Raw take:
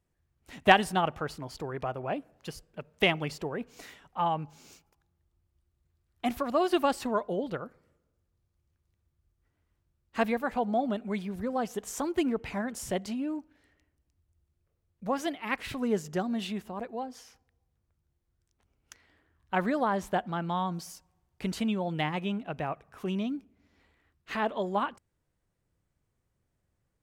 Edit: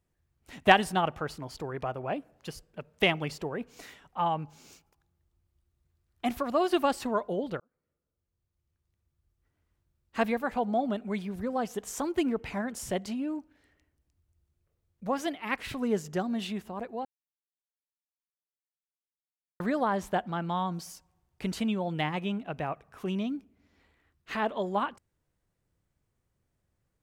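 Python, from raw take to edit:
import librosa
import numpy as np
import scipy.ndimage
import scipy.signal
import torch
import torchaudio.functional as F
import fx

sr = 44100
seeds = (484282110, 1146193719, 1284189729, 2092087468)

y = fx.edit(x, sr, fx.fade_in_span(start_s=7.6, length_s=2.71, curve='qsin'),
    fx.silence(start_s=17.05, length_s=2.55), tone=tone)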